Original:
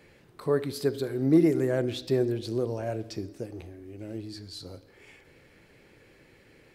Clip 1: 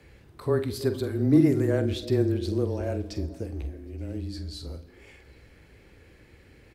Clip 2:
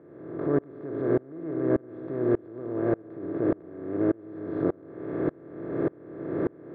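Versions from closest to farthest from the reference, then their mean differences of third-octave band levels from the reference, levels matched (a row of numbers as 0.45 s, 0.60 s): 1, 2; 3.0 dB, 11.0 dB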